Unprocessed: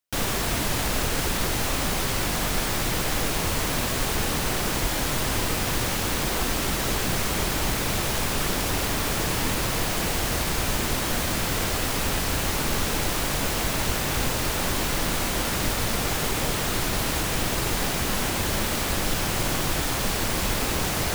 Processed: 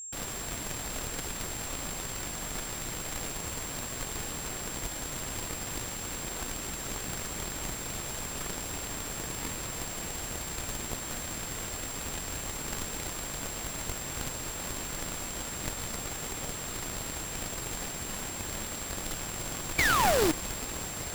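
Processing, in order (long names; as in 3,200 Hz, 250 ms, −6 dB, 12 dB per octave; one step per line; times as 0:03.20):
sound drawn into the spectrogram fall, 0:19.78–0:20.32, 290–2,400 Hz −18 dBFS
harmonic generator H 3 −11 dB, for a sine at −8.5 dBFS
steady tone 7,500 Hz −39 dBFS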